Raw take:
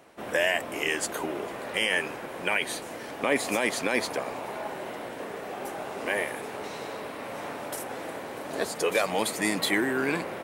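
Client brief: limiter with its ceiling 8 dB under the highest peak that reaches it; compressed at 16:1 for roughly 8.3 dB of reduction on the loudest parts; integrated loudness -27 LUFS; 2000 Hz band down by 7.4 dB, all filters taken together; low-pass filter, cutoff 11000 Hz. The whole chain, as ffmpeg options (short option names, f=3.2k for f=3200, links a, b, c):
-af "lowpass=11k,equalizer=f=2k:t=o:g=-9,acompressor=threshold=-30dB:ratio=16,volume=10.5dB,alimiter=limit=-15.5dB:level=0:latency=1"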